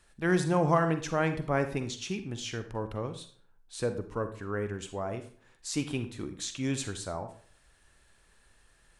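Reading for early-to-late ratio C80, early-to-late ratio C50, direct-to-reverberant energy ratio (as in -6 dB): 15.0 dB, 11.0 dB, 9.0 dB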